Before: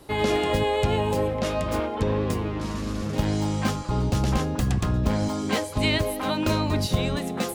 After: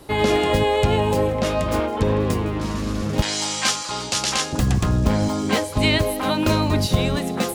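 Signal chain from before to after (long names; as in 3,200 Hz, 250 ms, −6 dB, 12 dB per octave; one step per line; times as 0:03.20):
0:03.22–0:04.53: meter weighting curve ITU-R 468
on a send: delay with a high-pass on its return 160 ms, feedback 77%, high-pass 5,000 Hz, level −18 dB
on the sum: level +4.5 dB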